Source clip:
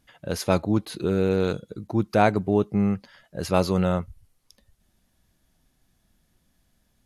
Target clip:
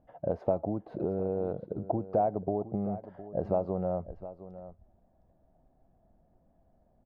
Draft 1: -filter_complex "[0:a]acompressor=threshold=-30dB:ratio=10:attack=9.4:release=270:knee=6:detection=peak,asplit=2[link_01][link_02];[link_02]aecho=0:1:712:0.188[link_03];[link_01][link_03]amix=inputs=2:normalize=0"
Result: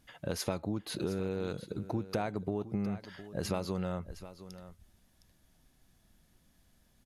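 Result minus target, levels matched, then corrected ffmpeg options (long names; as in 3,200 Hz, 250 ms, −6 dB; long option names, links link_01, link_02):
500 Hz band −3.0 dB
-filter_complex "[0:a]acompressor=threshold=-30dB:ratio=10:attack=9.4:release=270:knee=6:detection=peak,lowpass=frequency=680:width_type=q:width=3.8,asplit=2[link_01][link_02];[link_02]aecho=0:1:712:0.188[link_03];[link_01][link_03]amix=inputs=2:normalize=0"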